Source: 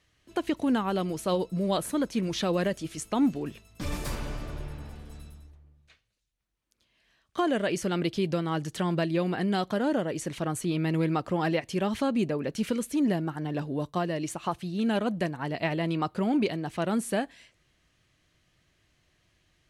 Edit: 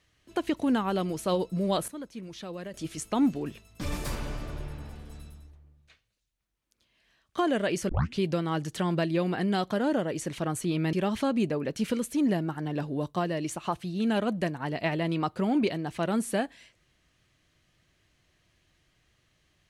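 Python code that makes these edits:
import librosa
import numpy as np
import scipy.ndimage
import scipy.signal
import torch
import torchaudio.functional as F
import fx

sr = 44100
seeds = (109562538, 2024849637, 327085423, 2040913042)

y = fx.edit(x, sr, fx.clip_gain(start_s=1.88, length_s=0.86, db=-12.0),
    fx.tape_start(start_s=7.89, length_s=0.3),
    fx.cut(start_s=10.93, length_s=0.79), tone=tone)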